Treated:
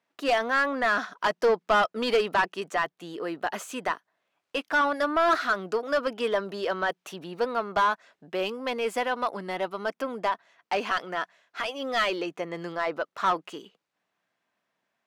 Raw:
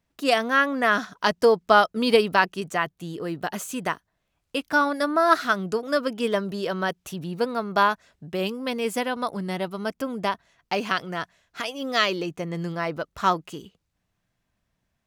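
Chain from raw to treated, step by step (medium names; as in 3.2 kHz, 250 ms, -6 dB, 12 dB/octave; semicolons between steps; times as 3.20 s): high-pass 220 Hz 12 dB/octave; overdrive pedal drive 20 dB, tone 2 kHz, clips at -3.5 dBFS; trim -9 dB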